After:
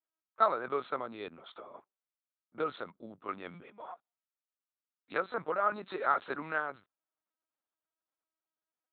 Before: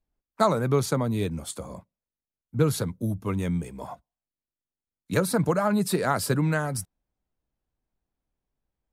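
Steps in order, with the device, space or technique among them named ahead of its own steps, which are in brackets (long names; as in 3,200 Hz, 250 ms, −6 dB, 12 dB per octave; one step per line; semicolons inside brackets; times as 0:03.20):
talking toy (linear-prediction vocoder at 8 kHz pitch kept; high-pass filter 460 Hz 12 dB per octave; parametric band 1,300 Hz +9 dB 0.48 octaves)
level −7 dB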